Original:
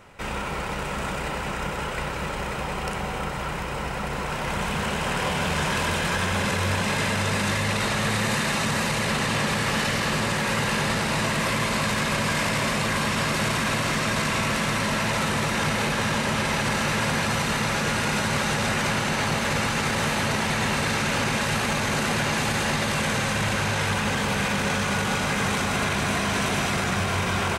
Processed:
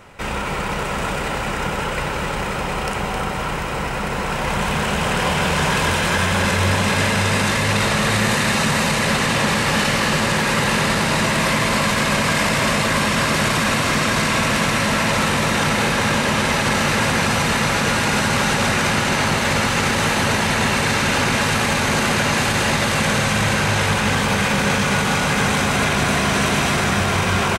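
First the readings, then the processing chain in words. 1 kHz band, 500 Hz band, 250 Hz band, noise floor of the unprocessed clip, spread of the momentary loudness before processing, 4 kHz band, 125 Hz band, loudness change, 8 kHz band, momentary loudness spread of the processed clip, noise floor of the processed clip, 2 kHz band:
+6.0 dB, +6.0 dB, +6.0 dB, −30 dBFS, 6 LU, +6.0 dB, +5.5 dB, +6.0 dB, +6.0 dB, 6 LU, −24 dBFS, +6.5 dB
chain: repeating echo 264 ms, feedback 24%, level −7.5 dB
level +5.5 dB

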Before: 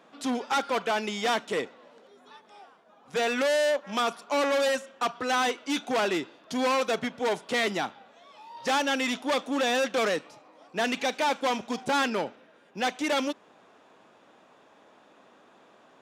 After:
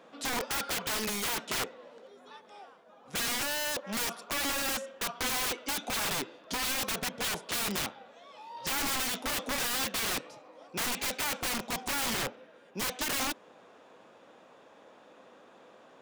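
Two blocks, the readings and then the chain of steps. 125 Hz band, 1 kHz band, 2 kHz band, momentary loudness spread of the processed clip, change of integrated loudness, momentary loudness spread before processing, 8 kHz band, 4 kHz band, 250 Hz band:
+2.0 dB, −8.0 dB, −4.0 dB, 9 LU, −4.0 dB, 8 LU, +6.5 dB, −0.5 dB, −8.5 dB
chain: parametric band 510 Hz +7 dB 0.24 octaves
wrap-around overflow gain 26.5 dB

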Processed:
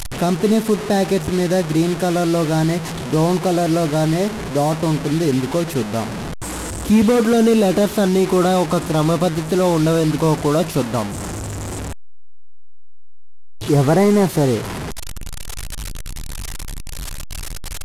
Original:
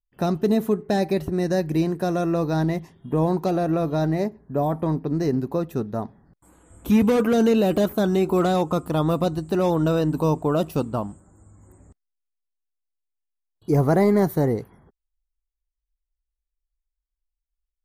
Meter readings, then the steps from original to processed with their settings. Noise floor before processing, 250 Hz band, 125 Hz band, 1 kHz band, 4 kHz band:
−83 dBFS, +5.0 dB, +5.0 dB, +5.5 dB, +10.5 dB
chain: linear delta modulator 64 kbit/s, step −26.5 dBFS
in parallel at −5.5 dB: soft clipping −21 dBFS, distortion −10 dB
on the sum: level +2.5 dB

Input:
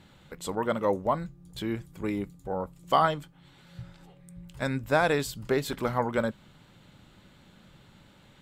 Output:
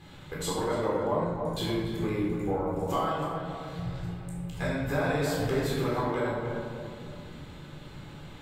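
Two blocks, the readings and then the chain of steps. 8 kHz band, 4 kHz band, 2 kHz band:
+1.5 dB, +0.5 dB, −2.5 dB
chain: downward compressor 6 to 1, threshold −35 dBFS, peak gain reduction 16.5 dB
tape delay 287 ms, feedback 47%, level −4 dB, low-pass 1,600 Hz
rectangular room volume 770 cubic metres, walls mixed, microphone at 3.9 metres

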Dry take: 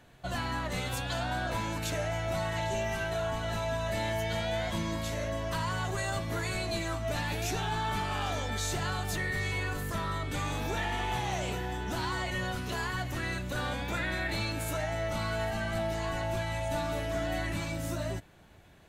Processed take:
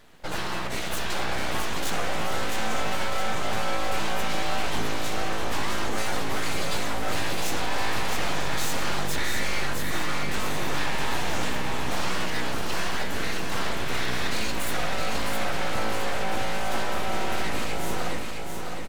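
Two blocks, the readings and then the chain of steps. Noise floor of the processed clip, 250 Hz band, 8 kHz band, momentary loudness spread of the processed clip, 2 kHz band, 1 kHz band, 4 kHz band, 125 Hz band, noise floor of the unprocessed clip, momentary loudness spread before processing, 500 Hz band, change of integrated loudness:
−27 dBFS, +3.5 dB, +7.0 dB, 2 LU, +5.0 dB, +5.0 dB, +7.0 dB, −2.5 dB, −38 dBFS, 2 LU, +2.0 dB, +4.0 dB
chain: full-wave rectification
repeating echo 663 ms, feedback 49%, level −4.5 dB
level +6 dB

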